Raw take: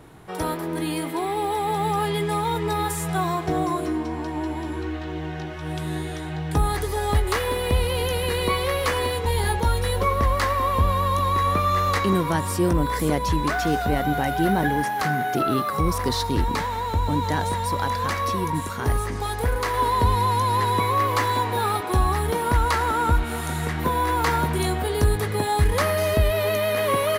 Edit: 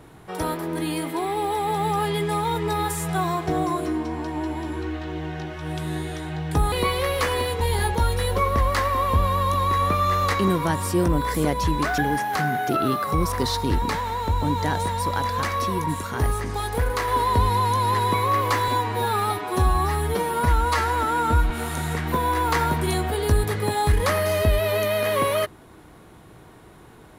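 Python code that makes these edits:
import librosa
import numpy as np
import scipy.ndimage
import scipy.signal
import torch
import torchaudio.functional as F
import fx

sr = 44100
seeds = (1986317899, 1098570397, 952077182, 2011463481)

y = fx.edit(x, sr, fx.cut(start_s=6.72, length_s=1.65),
    fx.cut(start_s=13.63, length_s=1.01),
    fx.stretch_span(start_s=21.34, length_s=1.88, factor=1.5), tone=tone)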